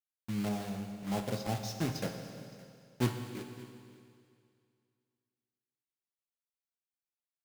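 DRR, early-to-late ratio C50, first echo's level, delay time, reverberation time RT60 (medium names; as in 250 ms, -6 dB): 4.5 dB, 5.5 dB, -21.5 dB, 568 ms, 2.3 s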